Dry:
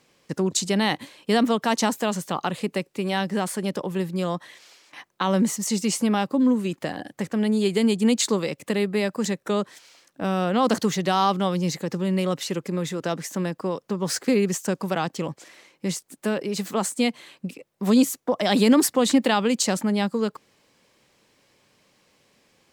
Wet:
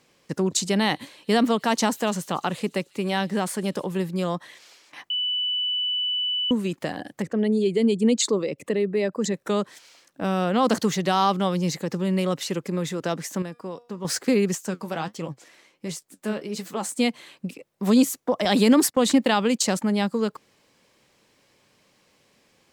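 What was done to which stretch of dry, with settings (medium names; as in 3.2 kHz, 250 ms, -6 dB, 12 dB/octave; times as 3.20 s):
0.80–3.97 s: feedback echo behind a high-pass 146 ms, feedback 74%, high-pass 4.2 kHz, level -21.5 dB
5.10–6.51 s: bleep 2.98 kHz -22.5 dBFS
7.22–9.34 s: resonances exaggerated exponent 1.5
13.42–14.05 s: feedback comb 240 Hz, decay 0.49 s
14.55–16.89 s: flange 1.4 Hz, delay 5.4 ms, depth 9.6 ms, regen +52%
18.45–19.82 s: gate -30 dBFS, range -16 dB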